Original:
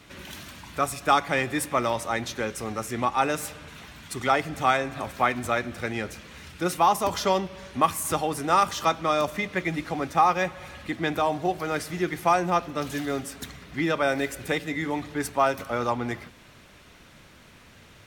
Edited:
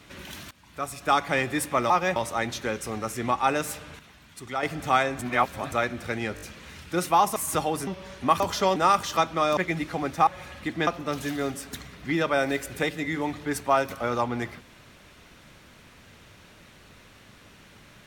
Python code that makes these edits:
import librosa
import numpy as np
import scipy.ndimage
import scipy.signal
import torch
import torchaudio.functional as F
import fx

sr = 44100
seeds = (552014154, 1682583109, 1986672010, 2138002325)

y = fx.edit(x, sr, fx.fade_in_from(start_s=0.51, length_s=0.77, floor_db=-19.0),
    fx.clip_gain(start_s=3.73, length_s=0.64, db=-8.0),
    fx.reverse_span(start_s=4.93, length_s=0.53),
    fx.stutter(start_s=6.09, slice_s=0.02, count=4),
    fx.swap(start_s=7.04, length_s=0.36, other_s=7.93, other_length_s=0.51),
    fx.cut(start_s=9.25, length_s=0.29),
    fx.move(start_s=10.24, length_s=0.26, to_s=1.9),
    fx.cut(start_s=11.1, length_s=1.46), tone=tone)